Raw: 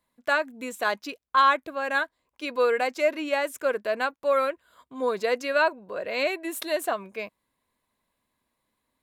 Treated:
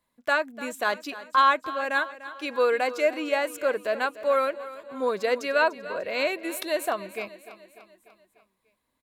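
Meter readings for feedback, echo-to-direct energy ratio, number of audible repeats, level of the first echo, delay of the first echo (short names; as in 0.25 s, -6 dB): 55%, -14.0 dB, 4, -15.5 dB, 0.296 s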